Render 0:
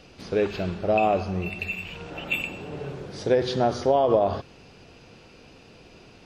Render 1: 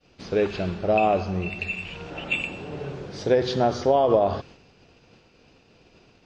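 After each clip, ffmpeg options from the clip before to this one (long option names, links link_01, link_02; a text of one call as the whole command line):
ffmpeg -i in.wav -af "lowpass=frequency=7500:width=0.5412,lowpass=frequency=7500:width=1.3066,agate=range=-33dB:threshold=-43dB:ratio=3:detection=peak,volume=1dB" out.wav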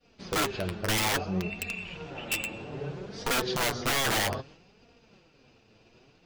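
ffmpeg -i in.wav -af "aeval=exprs='(mod(7.94*val(0)+1,2)-1)/7.94':channel_layout=same,flanger=delay=4.2:depth=5:regen=35:speed=0.61:shape=sinusoidal" out.wav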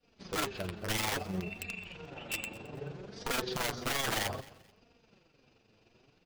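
ffmpeg -i in.wav -af "tremolo=f=23:d=0.462,aecho=1:1:217|434:0.0891|0.025,volume=-4dB" out.wav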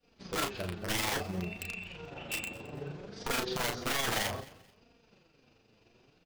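ffmpeg -i in.wav -filter_complex "[0:a]asplit=2[link_01][link_02];[link_02]adelay=34,volume=-6dB[link_03];[link_01][link_03]amix=inputs=2:normalize=0" out.wav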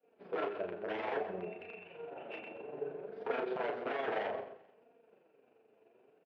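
ffmpeg -i in.wav -filter_complex "[0:a]highpass=320,equalizer=frequency=430:width_type=q:width=4:gain=9,equalizer=frequency=660:width_type=q:width=4:gain=6,equalizer=frequency=1200:width_type=q:width=4:gain=-5,equalizer=frequency=2000:width_type=q:width=4:gain=-5,lowpass=frequency=2200:width=0.5412,lowpass=frequency=2200:width=1.3066,asplit=2[link_01][link_02];[link_02]adelay=128.3,volume=-11dB,highshelf=frequency=4000:gain=-2.89[link_03];[link_01][link_03]amix=inputs=2:normalize=0,volume=-3dB" out.wav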